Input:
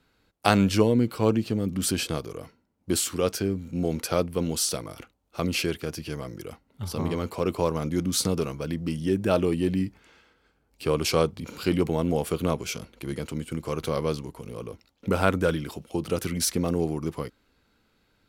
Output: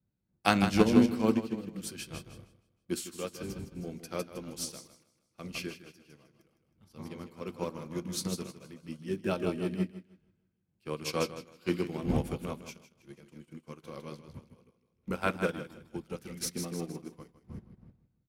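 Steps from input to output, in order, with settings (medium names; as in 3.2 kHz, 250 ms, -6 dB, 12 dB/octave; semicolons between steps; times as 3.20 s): wind noise 83 Hz -30 dBFS; feedback delay 157 ms, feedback 53%, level -6 dB; reverberation, pre-delay 3 ms, DRR 11.5 dB; upward expansion 2.5:1, over -38 dBFS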